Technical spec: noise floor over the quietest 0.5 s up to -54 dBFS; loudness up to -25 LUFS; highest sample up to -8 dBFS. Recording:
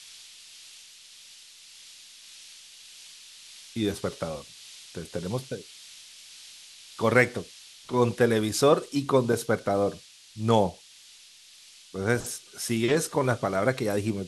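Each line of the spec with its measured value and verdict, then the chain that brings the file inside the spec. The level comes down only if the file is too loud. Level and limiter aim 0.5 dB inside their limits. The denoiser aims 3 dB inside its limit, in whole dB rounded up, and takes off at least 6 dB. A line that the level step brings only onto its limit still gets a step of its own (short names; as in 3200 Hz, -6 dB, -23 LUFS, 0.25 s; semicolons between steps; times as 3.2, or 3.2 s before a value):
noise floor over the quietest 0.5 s -52 dBFS: fail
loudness -26.5 LUFS: OK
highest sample -5.0 dBFS: fail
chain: denoiser 6 dB, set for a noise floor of -52 dBFS; limiter -8.5 dBFS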